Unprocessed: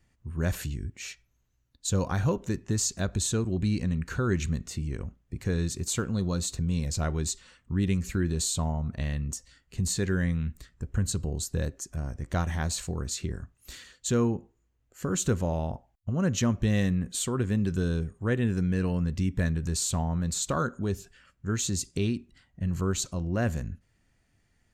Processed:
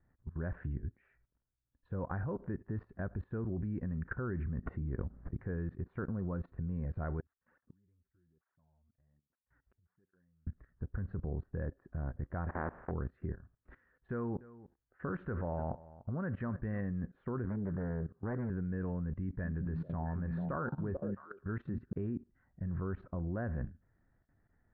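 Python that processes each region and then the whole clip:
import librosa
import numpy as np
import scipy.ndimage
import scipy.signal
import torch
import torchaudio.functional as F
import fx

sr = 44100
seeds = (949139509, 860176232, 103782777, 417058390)

y = fx.chain(x, sr, fx.block_float(bits=7),
    fx.air_absorb(metres=240.0),
    fx.pre_swell(db_per_s=45.0), at=(4.29, 5.37))
y = fx.chain(y, sr, fx.sample_sort(block=8),
    fx.gate_flip(shuts_db=-33.0, range_db=-35),
    fx.flanger_cancel(hz=1.2, depth_ms=6.8), at=(7.2, 10.47))
y = fx.spec_flatten(y, sr, power=0.3, at=(12.48, 12.9), fade=0.02)
y = fx.lowpass(y, sr, hz=1400.0, slope=12, at=(12.48, 12.9), fade=0.02)
y = fx.chain(y, sr, fx.peak_eq(hz=1900.0, db=6.5, octaves=2.2),
    fx.echo_single(ms=295, db=-19.0), at=(14.11, 16.81))
y = fx.chain(y, sr, fx.highpass(hz=97.0, slope=12),
    fx.peak_eq(hz=2800.0, db=-9.5, octaves=0.44),
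    fx.doppler_dist(depth_ms=0.62), at=(17.45, 18.5))
y = fx.chain(y, sr, fx.high_shelf(hz=4400.0, db=11.0),
    fx.echo_stepped(ms=221, hz=170.0, octaves=1.4, feedback_pct=70, wet_db=-2.5), at=(19.22, 21.93))
y = scipy.signal.sosfilt(scipy.signal.ellip(4, 1.0, 80, 1700.0, 'lowpass', fs=sr, output='sos'), y)
y = fx.level_steps(y, sr, step_db=18)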